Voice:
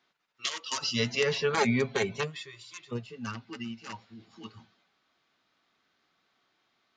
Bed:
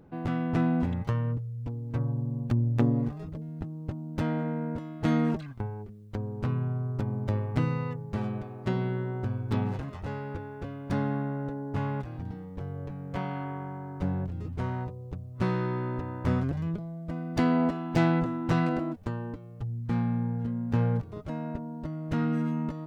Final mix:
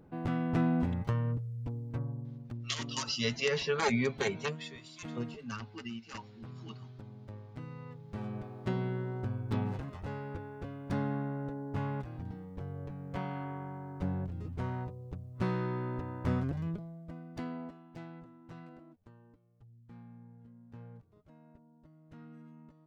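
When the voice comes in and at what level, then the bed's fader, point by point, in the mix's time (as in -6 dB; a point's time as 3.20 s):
2.25 s, -3.5 dB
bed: 1.76 s -3 dB
2.69 s -18 dB
7.60 s -18 dB
8.44 s -4.5 dB
16.68 s -4.5 dB
18.06 s -24 dB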